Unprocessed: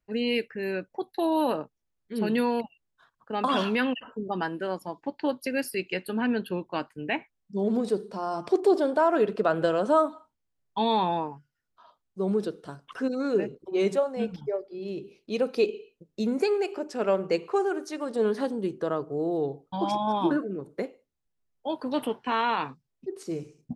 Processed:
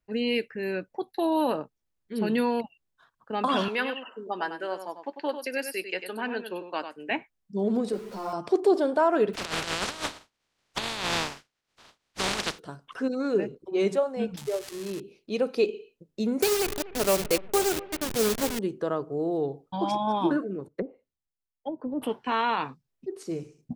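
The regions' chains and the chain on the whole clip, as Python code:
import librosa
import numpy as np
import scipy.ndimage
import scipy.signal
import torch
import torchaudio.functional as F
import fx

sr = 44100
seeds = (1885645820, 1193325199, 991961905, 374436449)

y = fx.chain(x, sr, fx.highpass(hz=420.0, slope=12),
    fx.echo_single(ms=97, db=-9.0), at=(3.68, 7.11))
y = fx.chain(y, sr, fx.zero_step(step_db=-38.5),
    fx.ensemble(), at=(7.92, 8.33))
y = fx.spec_flatten(y, sr, power=0.16, at=(9.33, 12.58), fade=0.02)
y = fx.lowpass(y, sr, hz=5100.0, slope=12, at=(9.33, 12.58), fade=0.02)
y = fx.over_compress(y, sr, threshold_db=-30.0, ratio=-0.5, at=(9.33, 12.58), fade=0.02)
y = fx.chain(y, sr, fx.crossing_spikes(level_db=-28.0),
    fx.resample_linear(factor=2), at=(14.37, 15.0))
y = fx.chain(y, sr, fx.delta_hold(step_db=-28.0),
    fx.high_shelf(hz=2900.0, db=11.5),
    fx.echo_bbd(ms=243, stages=4096, feedback_pct=36, wet_db=-17.5), at=(16.42, 18.59))
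y = fx.chain(y, sr, fx.env_lowpass_down(base_hz=330.0, full_db=-26.5),
    fx.band_widen(depth_pct=70), at=(20.68, 22.02))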